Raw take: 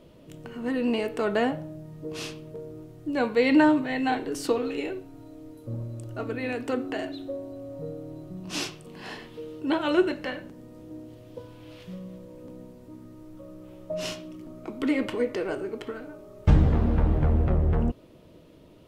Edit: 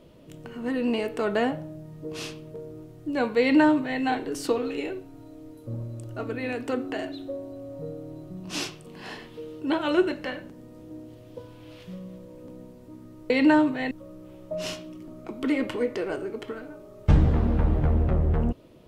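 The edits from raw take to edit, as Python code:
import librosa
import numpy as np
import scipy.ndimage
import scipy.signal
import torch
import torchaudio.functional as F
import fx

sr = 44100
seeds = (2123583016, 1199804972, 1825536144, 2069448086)

y = fx.edit(x, sr, fx.duplicate(start_s=3.4, length_s=0.61, to_s=13.3), tone=tone)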